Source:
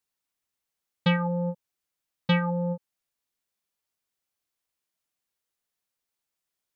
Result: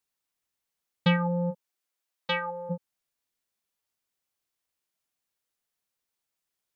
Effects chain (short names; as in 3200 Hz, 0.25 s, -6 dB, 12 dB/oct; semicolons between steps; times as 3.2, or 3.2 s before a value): 1.5–2.69 HPF 200 Hz -> 700 Hz 12 dB/oct